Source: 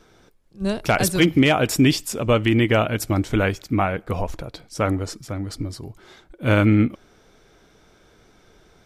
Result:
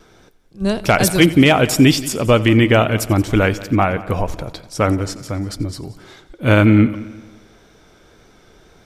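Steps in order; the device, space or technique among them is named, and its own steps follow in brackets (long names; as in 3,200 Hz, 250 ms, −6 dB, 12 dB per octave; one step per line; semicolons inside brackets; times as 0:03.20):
multi-head tape echo (echo machine with several playback heads 89 ms, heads first and second, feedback 46%, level −20 dB; tape wow and flutter 23 cents)
level +5 dB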